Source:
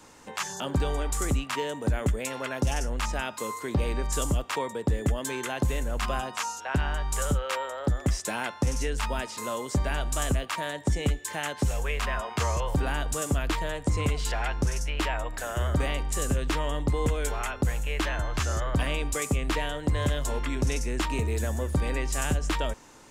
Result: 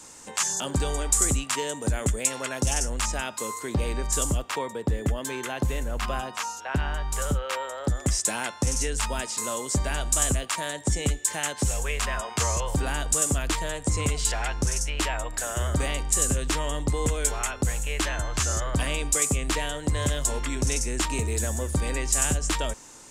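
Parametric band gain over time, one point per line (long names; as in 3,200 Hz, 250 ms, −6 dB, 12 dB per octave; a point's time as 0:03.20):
parametric band 8,000 Hz 1.3 octaves
0:02.91 +14 dB
0:03.35 +7.5 dB
0:04.26 +7.5 dB
0:04.66 +0.5 dB
0:07.44 +0.5 dB
0:07.99 +12 dB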